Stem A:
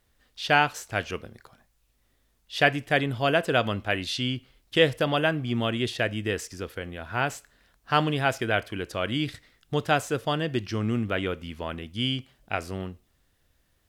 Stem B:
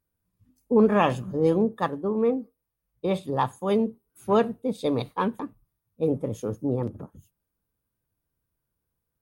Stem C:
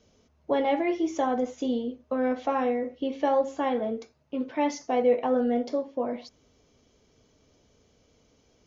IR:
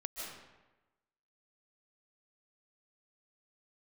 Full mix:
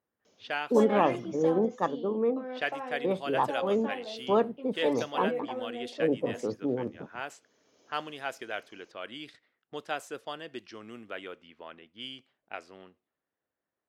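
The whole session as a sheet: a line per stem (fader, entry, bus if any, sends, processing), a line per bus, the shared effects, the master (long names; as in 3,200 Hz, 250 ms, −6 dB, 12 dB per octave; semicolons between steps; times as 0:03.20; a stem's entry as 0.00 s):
−14.0 dB, 0.00 s, no send, low-pass that shuts in the quiet parts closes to 1,400 Hz, open at −22 dBFS
−6.5 dB, 0.00 s, no send, spectral tilt −3 dB per octave
−0.5 dB, 0.25 s, no send, automatic ducking −11 dB, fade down 1.35 s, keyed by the second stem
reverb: not used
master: high-pass filter 300 Hz 12 dB per octave; harmonic and percussive parts rebalanced percussive +4 dB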